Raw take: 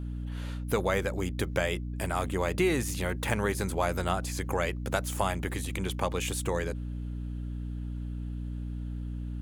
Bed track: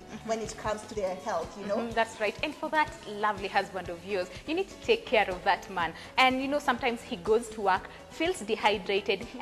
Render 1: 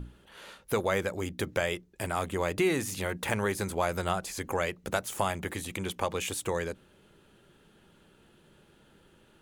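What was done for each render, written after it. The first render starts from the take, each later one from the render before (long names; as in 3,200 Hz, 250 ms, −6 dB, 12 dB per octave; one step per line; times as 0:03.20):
mains-hum notches 60/120/180/240/300 Hz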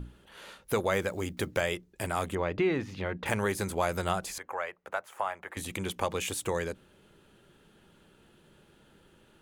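0:00.93–0:01.61: one scale factor per block 7 bits
0:02.35–0:03.26: high-frequency loss of the air 260 metres
0:04.38–0:05.57: three-way crossover with the lows and the highs turned down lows −23 dB, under 570 Hz, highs −18 dB, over 2,100 Hz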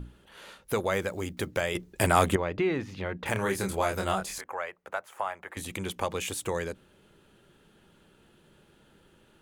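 0:01.75–0:02.36: clip gain +9.5 dB
0:03.33–0:04.44: double-tracking delay 26 ms −3.5 dB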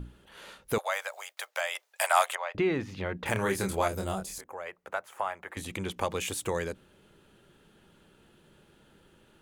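0:00.78–0:02.55: Butterworth high-pass 610 Hz 48 dB per octave
0:03.88–0:04.66: parametric band 1,800 Hz −10.5 dB 2.6 octaves
0:05.55–0:05.96: low-pass filter 8,700 Hz → 4,400 Hz 6 dB per octave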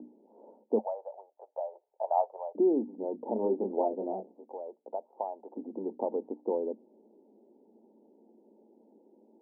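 Chebyshev band-pass filter 220–910 Hz, order 5
tilt shelving filter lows +6.5 dB, about 710 Hz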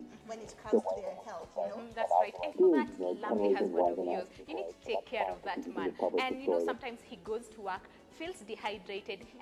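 mix in bed track −12.5 dB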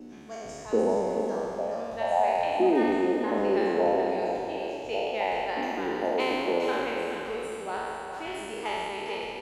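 peak hold with a decay on every bin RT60 2.58 s
on a send: single-tap delay 423 ms −7.5 dB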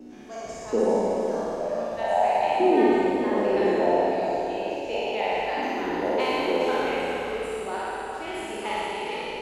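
flutter between parallel walls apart 9.8 metres, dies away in 1.1 s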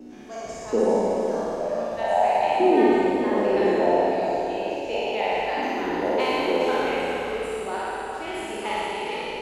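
level +1.5 dB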